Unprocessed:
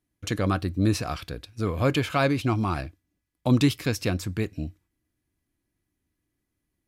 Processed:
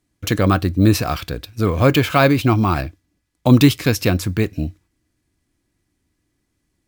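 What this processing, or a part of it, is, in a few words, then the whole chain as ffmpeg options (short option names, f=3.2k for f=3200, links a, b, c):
crushed at another speed: -af "asetrate=35280,aresample=44100,acrusher=samples=3:mix=1:aa=0.000001,asetrate=55125,aresample=44100,volume=9dB"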